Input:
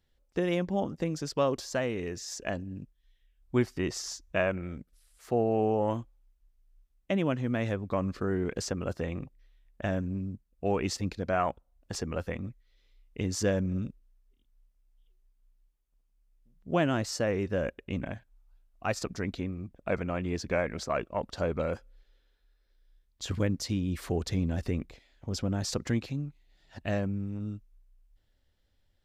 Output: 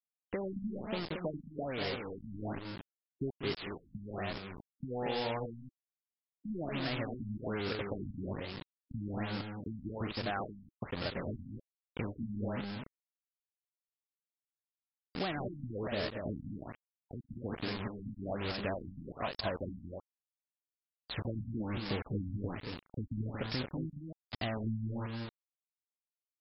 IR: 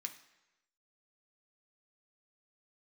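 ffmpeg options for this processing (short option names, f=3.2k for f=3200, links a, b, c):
-filter_complex "[0:a]asetrate=48510,aresample=44100,acompressor=threshold=-38dB:ratio=4,aresample=16000,acrusher=bits=6:mix=0:aa=0.000001,aresample=44100,aemphasis=mode=production:type=75fm,asplit=2[a][b];[b]aecho=0:1:192.4|227.4:0.282|0.562[c];[a][c]amix=inputs=2:normalize=0,afftfilt=real='re*lt(b*sr/1024,260*pow(5500/260,0.5+0.5*sin(2*PI*1.2*pts/sr)))':imag='im*lt(b*sr/1024,260*pow(5500/260,0.5+0.5*sin(2*PI*1.2*pts/sr)))':win_size=1024:overlap=0.75,volume=2.5dB"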